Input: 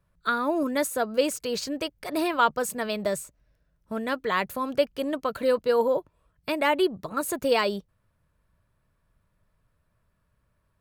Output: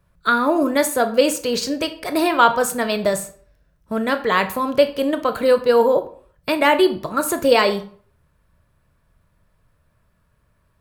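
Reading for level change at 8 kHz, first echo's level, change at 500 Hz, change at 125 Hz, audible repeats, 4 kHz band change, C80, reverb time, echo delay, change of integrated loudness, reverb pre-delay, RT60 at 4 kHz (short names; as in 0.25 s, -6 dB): +8.0 dB, none, +8.0 dB, +8.0 dB, none, +8.0 dB, 17.5 dB, 0.50 s, none, +8.0 dB, 19 ms, 0.35 s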